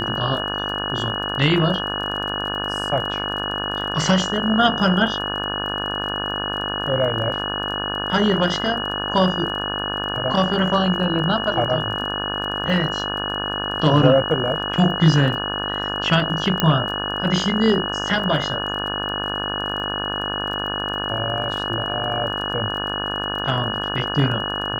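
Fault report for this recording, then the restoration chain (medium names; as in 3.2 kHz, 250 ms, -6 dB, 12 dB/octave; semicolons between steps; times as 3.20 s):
buzz 50 Hz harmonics 35 -28 dBFS
crackle 26 per s -31 dBFS
whine 2.9 kHz -26 dBFS
16.60 s: pop -3 dBFS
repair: de-click; de-hum 50 Hz, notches 35; band-stop 2.9 kHz, Q 30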